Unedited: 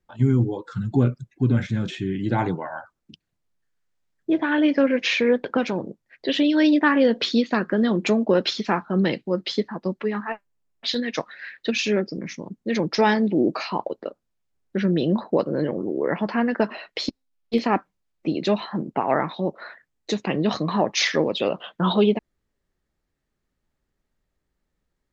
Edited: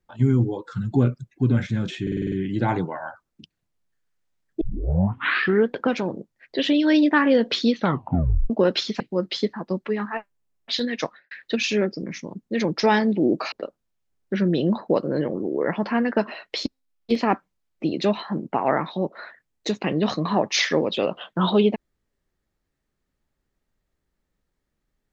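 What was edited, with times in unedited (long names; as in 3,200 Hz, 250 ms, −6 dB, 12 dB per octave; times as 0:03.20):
0:02.02: stutter 0.05 s, 7 plays
0:04.31: tape start 1.12 s
0:07.43: tape stop 0.77 s
0:08.70–0:09.15: remove
0:11.20–0:11.46: fade out and dull
0:13.67–0:13.95: remove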